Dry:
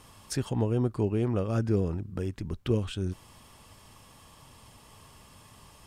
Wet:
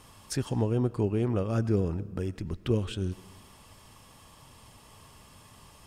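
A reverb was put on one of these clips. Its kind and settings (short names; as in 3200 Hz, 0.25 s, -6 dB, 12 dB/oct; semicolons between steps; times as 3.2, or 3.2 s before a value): digital reverb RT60 1.2 s, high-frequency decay 0.9×, pre-delay 60 ms, DRR 18 dB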